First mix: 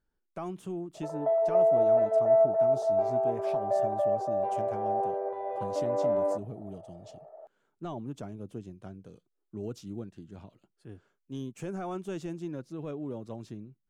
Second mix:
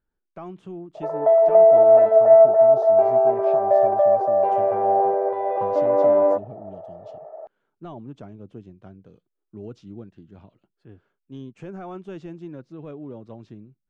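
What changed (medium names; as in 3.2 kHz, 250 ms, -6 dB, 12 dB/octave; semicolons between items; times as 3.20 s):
background +10.5 dB; master: add low-pass 3.5 kHz 12 dB/octave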